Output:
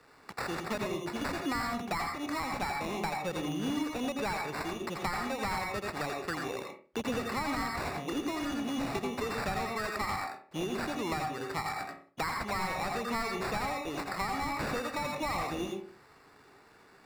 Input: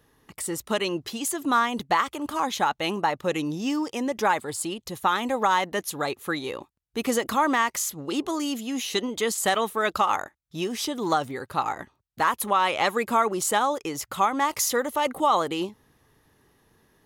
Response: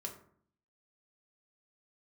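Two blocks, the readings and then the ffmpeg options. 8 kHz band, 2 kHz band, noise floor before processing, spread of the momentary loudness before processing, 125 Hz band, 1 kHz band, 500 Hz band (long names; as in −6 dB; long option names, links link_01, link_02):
−14.5 dB, −6.5 dB, −70 dBFS, 8 LU, −0.5 dB, −10.0 dB, −8.5 dB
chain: -filter_complex "[0:a]acrusher=samples=14:mix=1:aa=0.000001,asplit=2[link_01][link_02];[1:a]atrim=start_sample=2205,asetrate=83790,aresample=44100,adelay=82[link_03];[link_02][link_03]afir=irnorm=-1:irlink=0,volume=3dB[link_04];[link_01][link_04]amix=inputs=2:normalize=0,asplit=2[link_05][link_06];[link_06]highpass=frequency=720:poles=1,volume=14dB,asoftclip=type=tanh:threshold=-7dB[link_07];[link_05][link_07]amix=inputs=2:normalize=0,lowpass=frequency=4800:poles=1,volume=-6dB,acrossover=split=190[link_08][link_09];[link_09]acompressor=threshold=-33dB:ratio=4[link_10];[link_08][link_10]amix=inputs=2:normalize=0,volume=-2dB"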